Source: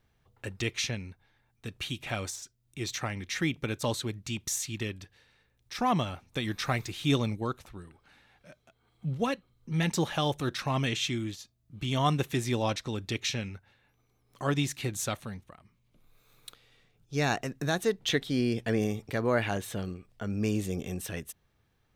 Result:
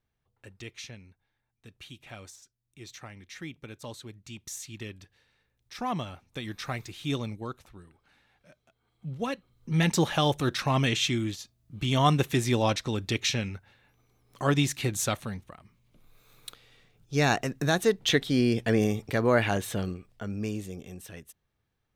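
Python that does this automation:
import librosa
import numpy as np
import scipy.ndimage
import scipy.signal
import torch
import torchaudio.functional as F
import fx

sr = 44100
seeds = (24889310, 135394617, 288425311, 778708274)

y = fx.gain(x, sr, db=fx.line((3.91, -11.0), (5.0, -4.5), (9.1, -4.5), (9.7, 4.0), (19.85, 4.0), (20.81, -7.5)))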